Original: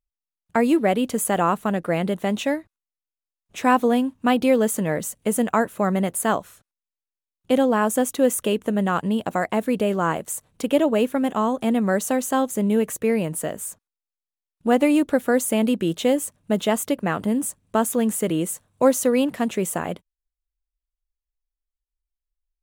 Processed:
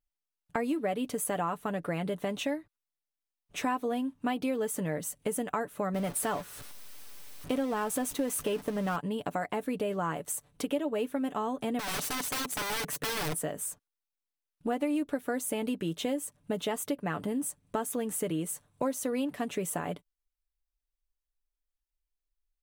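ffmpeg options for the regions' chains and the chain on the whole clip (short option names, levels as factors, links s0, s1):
-filter_complex "[0:a]asettb=1/sr,asplit=3[s0][s1][s2];[s0]atrim=end=5.944[s3];[s1]atrim=start=5.94:end=8.96,asetpts=PTS-STARTPTS,afade=t=in:d=0.004:c=qsin,afade=t=out:st=3.016:d=0.004:c=qsin,aeval=exprs='val(0)+0.5*0.0473*sgn(val(0))':c=same,agate=range=0.316:threshold=0.0355:ratio=16:release=100:detection=peak[s4];[s2]atrim=start=8.956[s5];[s3][s4]acrossfade=d=0.004:c1=hsin:c2=qsin[s6];[s6][s5]acrossfade=d=0.004:c1=qsin:c2=hsin,asettb=1/sr,asplit=3[s7][s8][s9];[s7]atrim=end=11.794[s10];[s8]atrim=start=11.79:end=13.35,asetpts=PTS-STARTPTS,afade=t=in:d=0.004:c=qsin,afade=t=out:st=1.556:d=0.004:c=qsin,lowshelf=f=110:t=q:w=3:g=-7,aeval=exprs='(mod(12.6*val(0)+1,2)-1)/12.6':c=same[s11];[s9]atrim=start=13.346[s12];[s10][s11]acrossfade=d=0.004:c1=hsin:c2=qsin[s13];[s13][s12]acrossfade=d=0.004:c1=qsin:c2=hsin,bandreject=f=7000:w=14,aecho=1:1:6.9:0.46,acompressor=threshold=0.0398:ratio=3,volume=0.708"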